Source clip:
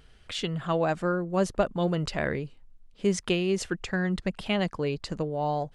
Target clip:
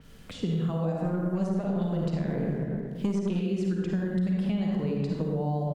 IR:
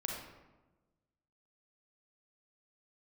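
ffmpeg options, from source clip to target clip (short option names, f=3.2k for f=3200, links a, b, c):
-filter_complex "[0:a]acrusher=bits=9:mix=0:aa=0.000001[a];[1:a]atrim=start_sample=2205,asetrate=33075,aresample=44100[b];[a][b]afir=irnorm=-1:irlink=0,acompressor=threshold=-31dB:ratio=2,equalizer=f=190:t=o:w=1.3:g=12,asplit=2[c][d];[d]adelay=35,volume=-14dB[e];[c][e]amix=inputs=2:normalize=0,asettb=1/sr,asplit=3[f][g][h];[f]atrim=end=1.044[i];[g]atrim=start=1.04:end=3.42,asetpts=PTS-STARTPTS,afade=t=in:d=0.004:c=qsin,afade=t=out:st=2.376:d=0.004:c=qsin,aeval=exprs='0.355*(cos(1*acos(clip(val(0)/0.355,-1,1)))-cos(1*PI/2))+0.0316*(cos(6*acos(clip(val(0)/0.355,-1,1)))-cos(6*PI/2))':c=same[j];[h]atrim=start=3.416[k];[i][j]acrossfade=d=0.004:c1=hsin:c2=qsin[l];[l][k]acrossfade=d=0.004:c1=qsin:c2=hsin,acrossover=split=85|910|4300[m][n][o][p];[m]acompressor=threshold=-48dB:ratio=4[q];[n]acompressor=threshold=-26dB:ratio=4[r];[o]acompressor=threshold=-50dB:ratio=4[s];[p]acompressor=threshold=-51dB:ratio=4[t];[q][r][s][t]amix=inputs=4:normalize=0,adynamicequalizer=threshold=0.00126:dfrequency=4900:dqfactor=0.7:tfrequency=4900:tqfactor=0.7:attack=5:release=100:ratio=0.375:range=3:mode=cutabove:tftype=highshelf"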